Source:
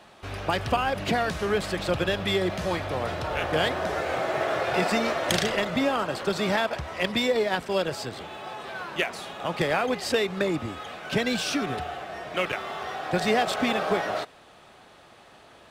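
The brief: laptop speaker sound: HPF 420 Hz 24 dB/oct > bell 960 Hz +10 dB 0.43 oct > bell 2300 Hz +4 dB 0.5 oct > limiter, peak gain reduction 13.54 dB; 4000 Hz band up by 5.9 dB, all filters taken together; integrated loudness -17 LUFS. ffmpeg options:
-af "highpass=f=420:w=0.5412,highpass=f=420:w=1.3066,equalizer=f=960:t=o:w=0.43:g=10,equalizer=f=2.3k:t=o:w=0.5:g=4,equalizer=f=4k:t=o:g=6.5,volume=10.5dB,alimiter=limit=-6.5dB:level=0:latency=1"

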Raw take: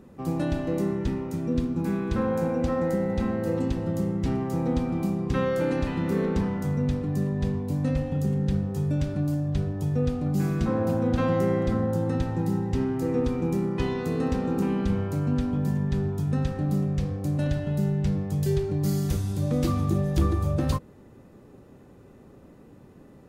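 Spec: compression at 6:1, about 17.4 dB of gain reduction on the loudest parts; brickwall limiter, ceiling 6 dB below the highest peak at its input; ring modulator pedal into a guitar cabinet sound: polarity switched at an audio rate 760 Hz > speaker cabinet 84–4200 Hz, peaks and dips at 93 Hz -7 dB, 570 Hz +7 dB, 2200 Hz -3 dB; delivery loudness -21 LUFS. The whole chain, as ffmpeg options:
-af "acompressor=threshold=-40dB:ratio=6,alimiter=level_in=10.5dB:limit=-24dB:level=0:latency=1,volume=-10.5dB,aeval=exprs='val(0)*sgn(sin(2*PI*760*n/s))':c=same,highpass=84,equalizer=f=93:t=q:w=4:g=-7,equalizer=f=570:t=q:w=4:g=7,equalizer=f=2.2k:t=q:w=4:g=-3,lowpass=f=4.2k:w=0.5412,lowpass=f=4.2k:w=1.3066,volume=20dB"

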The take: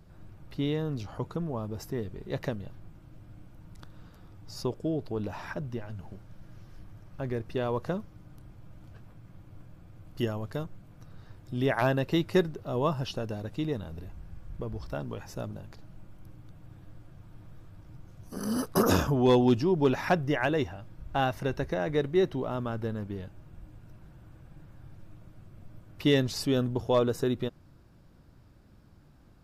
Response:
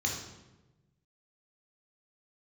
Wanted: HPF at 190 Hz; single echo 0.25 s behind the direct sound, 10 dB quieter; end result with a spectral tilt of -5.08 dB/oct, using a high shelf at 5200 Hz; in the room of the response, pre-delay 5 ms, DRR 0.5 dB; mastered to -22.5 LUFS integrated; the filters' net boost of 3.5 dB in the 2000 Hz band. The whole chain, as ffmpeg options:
-filter_complex "[0:a]highpass=190,equalizer=f=2k:t=o:g=5.5,highshelf=f=5.2k:g=-7,aecho=1:1:250:0.316,asplit=2[a][b];[1:a]atrim=start_sample=2205,adelay=5[c];[b][c]afir=irnorm=-1:irlink=0,volume=-6dB[d];[a][d]amix=inputs=2:normalize=0,volume=4.5dB"

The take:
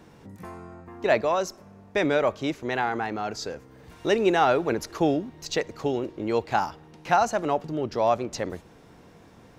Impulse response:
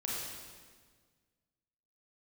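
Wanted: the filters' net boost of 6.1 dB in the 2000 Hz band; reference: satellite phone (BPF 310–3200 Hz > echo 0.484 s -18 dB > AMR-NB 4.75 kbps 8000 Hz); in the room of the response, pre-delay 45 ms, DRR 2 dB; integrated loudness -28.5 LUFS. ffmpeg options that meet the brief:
-filter_complex "[0:a]equalizer=f=2k:t=o:g=8.5,asplit=2[a][b];[1:a]atrim=start_sample=2205,adelay=45[c];[b][c]afir=irnorm=-1:irlink=0,volume=-5.5dB[d];[a][d]amix=inputs=2:normalize=0,highpass=310,lowpass=3.2k,aecho=1:1:484:0.126,volume=-2dB" -ar 8000 -c:a libopencore_amrnb -b:a 4750

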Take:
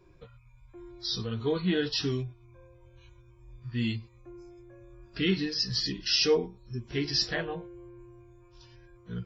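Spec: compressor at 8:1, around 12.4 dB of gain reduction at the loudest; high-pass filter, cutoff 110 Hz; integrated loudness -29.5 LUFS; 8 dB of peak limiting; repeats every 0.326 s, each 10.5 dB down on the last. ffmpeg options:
-af "highpass=110,acompressor=threshold=-32dB:ratio=8,alimiter=level_in=5.5dB:limit=-24dB:level=0:latency=1,volume=-5.5dB,aecho=1:1:326|652|978:0.299|0.0896|0.0269,volume=10.5dB"

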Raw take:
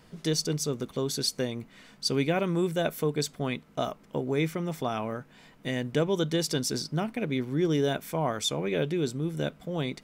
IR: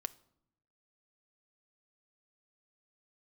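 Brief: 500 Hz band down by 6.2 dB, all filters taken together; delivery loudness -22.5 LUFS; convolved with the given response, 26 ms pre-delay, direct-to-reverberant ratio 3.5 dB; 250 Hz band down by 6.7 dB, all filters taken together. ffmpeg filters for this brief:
-filter_complex "[0:a]equalizer=f=250:t=o:g=-8.5,equalizer=f=500:t=o:g=-5,asplit=2[a][b];[1:a]atrim=start_sample=2205,adelay=26[c];[b][c]afir=irnorm=-1:irlink=0,volume=-1.5dB[d];[a][d]amix=inputs=2:normalize=0,volume=9dB"

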